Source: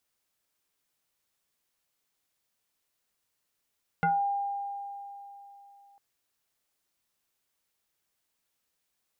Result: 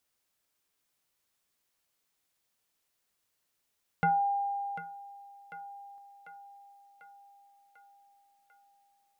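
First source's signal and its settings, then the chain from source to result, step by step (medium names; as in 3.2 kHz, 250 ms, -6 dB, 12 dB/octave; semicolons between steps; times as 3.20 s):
FM tone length 1.95 s, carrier 802 Hz, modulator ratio 0.79, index 1.6, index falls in 0.26 s exponential, decay 3.34 s, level -21.5 dB
thinning echo 745 ms, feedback 63%, high-pass 340 Hz, level -11 dB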